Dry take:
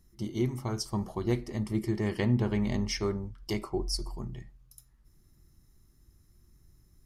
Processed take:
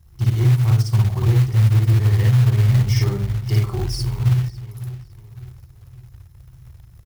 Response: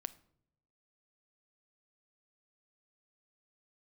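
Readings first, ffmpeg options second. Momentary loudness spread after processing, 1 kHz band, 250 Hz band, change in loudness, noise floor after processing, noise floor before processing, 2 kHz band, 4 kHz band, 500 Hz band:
13 LU, +6.0 dB, +3.0 dB, +14.0 dB, -47 dBFS, -63 dBFS, +7.5 dB, +6.0 dB, +1.5 dB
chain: -filter_complex "[0:a]bandreject=f=50:t=h:w=6,bandreject=f=100:t=h:w=6,asplit=2[a][b];[b]aeval=exprs='sgn(val(0))*max(abs(val(0))-0.00631,0)':c=same,volume=-9dB[c];[a][c]amix=inputs=2:normalize=0,asplit=2[d][e];[e]adelay=554,lowpass=f=2.7k:p=1,volume=-17dB,asplit=2[f][g];[g]adelay=554,lowpass=f=2.7k:p=1,volume=0.43,asplit=2[h][i];[i]adelay=554,lowpass=f=2.7k:p=1,volume=0.43,asplit=2[j][k];[k]adelay=554,lowpass=f=2.7k:p=1,volume=0.43[l];[d][f][h][j][l]amix=inputs=5:normalize=0,asoftclip=type=tanh:threshold=-22dB,lowshelf=f=160:t=q:w=3:g=12,asplit=2[m][n];[1:a]atrim=start_sample=2205,adelay=56[o];[n][o]afir=irnorm=-1:irlink=0,volume=3.5dB[p];[m][p]amix=inputs=2:normalize=0,acrusher=bits=5:mode=log:mix=0:aa=0.000001,equalizer=f=7.9k:w=1:g=-3.5,alimiter=limit=-10dB:level=0:latency=1:release=170,highpass=51,bandreject=f=610:w=17,volume=2dB"

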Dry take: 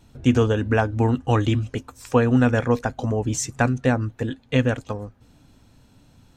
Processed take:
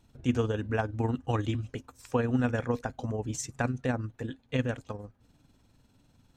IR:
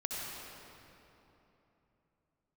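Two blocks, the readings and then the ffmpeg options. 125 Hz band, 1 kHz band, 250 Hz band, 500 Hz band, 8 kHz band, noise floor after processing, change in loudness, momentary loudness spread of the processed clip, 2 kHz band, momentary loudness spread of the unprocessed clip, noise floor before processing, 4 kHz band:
-9.5 dB, -9.5 dB, -9.5 dB, -9.5 dB, -9.5 dB, -67 dBFS, -9.5 dB, 12 LU, -9.5 dB, 12 LU, -56 dBFS, -10.0 dB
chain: -af "tremolo=f=20:d=0.462,volume=-7.5dB"

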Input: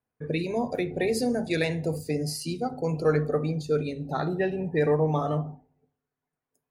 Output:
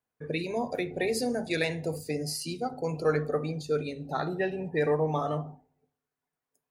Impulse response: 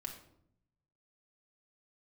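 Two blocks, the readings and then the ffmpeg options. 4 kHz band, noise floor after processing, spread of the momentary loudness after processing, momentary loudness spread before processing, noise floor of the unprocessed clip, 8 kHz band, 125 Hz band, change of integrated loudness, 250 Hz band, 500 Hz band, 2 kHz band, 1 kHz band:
0.0 dB, under -85 dBFS, 7 LU, 7 LU, under -85 dBFS, 0.0 dB, -5.5 dB, -3.0 dB, -4.5 dB, -2.5 dB, -0.5 dB, -1.0 dB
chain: -af "lowshelf=f=390:g=-6.5"

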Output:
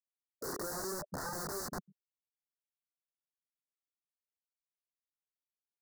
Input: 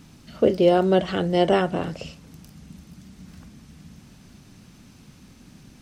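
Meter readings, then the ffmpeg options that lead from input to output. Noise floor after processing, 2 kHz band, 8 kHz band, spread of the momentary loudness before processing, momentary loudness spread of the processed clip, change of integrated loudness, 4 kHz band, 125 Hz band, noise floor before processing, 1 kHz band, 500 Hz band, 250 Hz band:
under -85 dBFS, -14.5 dB, +6.0 dB, 16 LU, 6 LU, -19.0 dB, -16.0 dB, -21.5 dB, -51 dBFS, -17.5 dB, -24.0 dB, -24.0 dB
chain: -af "afftfilt=real='re*gte(hypot(re,im),0.447)':imag='im*gte(hypot(re,im),0.447)':win_size=1024:overlap=0.75,agate=range=-14dB:threshold=-40dB:ratio=16:detection=peak,alimiter=limit=-14.5dB:level=0:latency=1:release=281,highpass=f=170:w=0.5412,highpass=f=170:w=1.3066,equalizer=f=400:t=q:w=4:g=9,equalizer=f=580:t=q:w=4:g=5,equalizer=f=820:t=q:w=4:g=-9,equalizer=f=1.3k:t=q:w=4:g=5,equalizer=f=1.9k:t=q:w=4:g=-6,equalizer=f=4k:t=q:w=4:g=7,lowpass=f=5.8k:w=0.5412,lowpass=f=5.8k:w=1.3066,asoftclip=type=hard:threshold=-25.5dB,flanger=delay=18:depth=3.7:speed=0.87,aeval=exprs='(mod(84.1*val(0)+1,2)-1)/84.1':c=same,asuperstop=centerf=2800:order=8:qfactor=1,volume=4.5dB"

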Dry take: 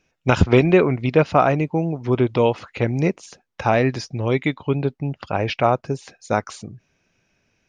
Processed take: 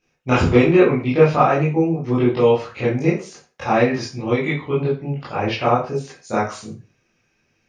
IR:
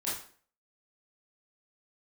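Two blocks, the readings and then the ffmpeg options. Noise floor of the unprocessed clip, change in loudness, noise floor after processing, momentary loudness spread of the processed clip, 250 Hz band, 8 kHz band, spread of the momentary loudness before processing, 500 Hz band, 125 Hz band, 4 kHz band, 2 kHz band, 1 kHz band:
-71 dBFS, +1.5 dB, -67 dBFS, 12 LU, +2.0 dB, +1.0 dB, 10 LU, +2.0 dB, 0.0 dB, +1.0 dB, +1.0 dB, +1.5 dB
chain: -filter_complex "[1:a]atrim=start_sample=2205,asetrate=57330,aresample=44100[a];[0:a][a]afir=irnorm=-1:irlink=0,volume=-1dB"

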